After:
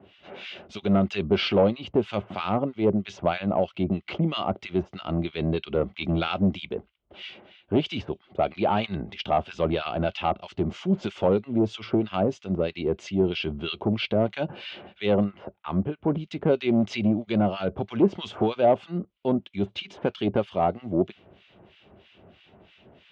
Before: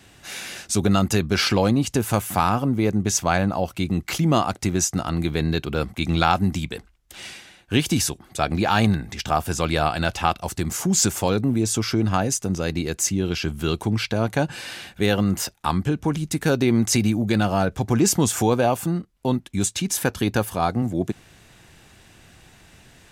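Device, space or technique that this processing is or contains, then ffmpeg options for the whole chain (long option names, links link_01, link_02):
guitar amplifier with harmonic tremolo: -filter_complex "[0:a]acrossover=split=1400[link_01][link_02];[link_01]aeval=exprs='val(0)*(1-1/2+1/2*cos(2*PI*3.1*n/s))':channel_layout=same[link_03];[link_02]aeval=exprs='val(0)*(1-1/2-1/2*cos(2*PI*3.1*n/s))':channel_layout=same[link_04];[link_03][link_04]amix=inputs=2:normalize=0,asoftclip=type=tanh:threshold=-16.5dB,highpass=75,equalizer=frequency=130:width_type=q:width=4:gain=-5,equalizer=frequency=200:width_type=q:width=4:gain=4,equalizer=frequency=390:width_type=q:width=4:gain=8,equalizer=frequency=600:width_type=q:width=4:gain=9,equalizer=frequency=1700:width_type=q:width=4:gain=-8,equalizer=frequency=3100:width_type=q:width=4:gain=6,lowpass=frequency=3400:width=0.5412,lowpass=frequency=3400:width=1.3066,asettb=1/sr,asplit=3[link_05][link_06][link_07];[link_05]atrim=end=15.244[link_08];[link_06]atrim=start=15.24:end=16.08,asetpts=PTS-STARTPTS,afade=type=in:duration=0.004:curve=qsin,afade=type=out:start_time=0.836:duration=0.004:curve=qsin,lowpass=1800[link_09];[link_07]atrim=start=16.076[link_10];[link_08][link_09]acrossfade=duration=0.004:curve1=hsin:curve2=qsin[link_11];[link_11][link_10]acrossfade=duration=0.004:curve1=qsin:curve2=hsin"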